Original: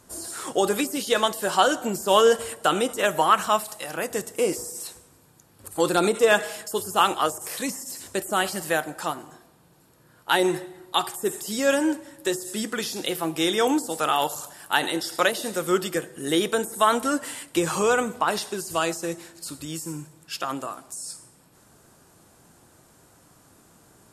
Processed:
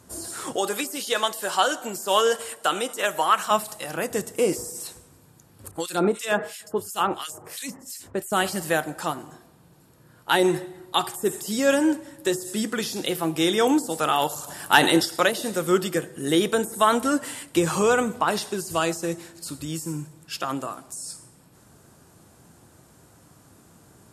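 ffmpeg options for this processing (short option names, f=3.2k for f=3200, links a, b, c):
-filter_complex "[0:a]asettb=1/sr,asplit=3[a][b][c];[a]atrim=end=0.564[d];[b]atrim=start=0.56:end=3.51,asetpts=PTS-STARTPTS,afade=t=in:d=0.004:c=qsin,afade=t=out:st=2.946:d=0.004:c=qsin,highpass=f=770:p=1[e];[c]atrim=start=3.506[f];[d][e]acrossfade=d=0.004:c1=hsin:c2=qsin[g];[g][f]acrossfade=d=0.004:c1=qsin:c2=hsin,asettb=1/sr,asplit=3[h][i][j];[h]atrim=end=5.714[k];[i]atrim=start=5.71:end=8.32,asetpts=PTS-STARTPTS,afade=t=in:d=0.004:c=qsin,afade=t=out:st=2.606:d=0.004:c=qsin,acrossover=split=1900[l][m];[l]aeval=exprs='val(0)*(1-1/2+1/2*cos(2*PI*2.9*n/s))':c=same[n];[m]aeval=exprs='val(0)*(1-1/2-1/2*cos(2*PI*2.9*n/s))':c=same[o];[n][o]amix=inputs=2:normalize=0[p];[j]atrim=start=8.316[q];[k][p]acrossfade=d=0.004:c1=hsin:c2=qsin[r];[r][q]acrossfade=d=0.004:c1=qsin:c2=hsin,asplit=3[s][t][u];[s]afade=t=out:st=14.47:d=0.02[v];[t]acontrast=77,afade=t=in:st=14.47:d=0.02,afade=t=out:st=15.04:d=0.02[w];[u]afade=t=in:st=15.04:d=0.02[x];[v][w][x]amix=inputs=3:normalize=0,highpass=55,lowshelf=f=230:g=7"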